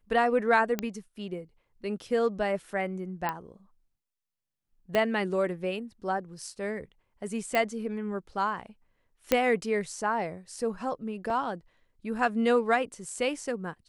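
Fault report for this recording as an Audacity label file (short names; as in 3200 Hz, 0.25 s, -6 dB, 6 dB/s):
0.790000	0.790000	pop -14 dBFS
3.290000	3.290000	pop -16 dBFS
4.950000	4.950000	pop -14 dBFS
7.550000	7.550000	pop -15 dBFS
9.320000	9.320000	pop -8 dBFS
11.300000	11.300000	gap 2.2 ms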